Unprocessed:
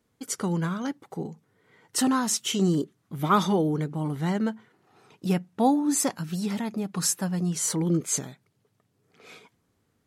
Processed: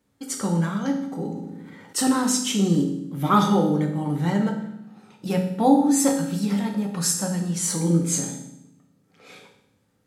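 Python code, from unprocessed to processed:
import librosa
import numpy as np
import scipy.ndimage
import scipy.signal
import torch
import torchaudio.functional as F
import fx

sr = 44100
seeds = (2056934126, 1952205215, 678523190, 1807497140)

y = fx.rev_fdn(x, sr, rt60_s=0.76, lf_ratio=1.6, hf_ratio=1.0, size_ms=11.0, drr_db=0.5)
y = fx.sustainer(y, sr, db_per_s=31.0, at=(1.16, 1.98))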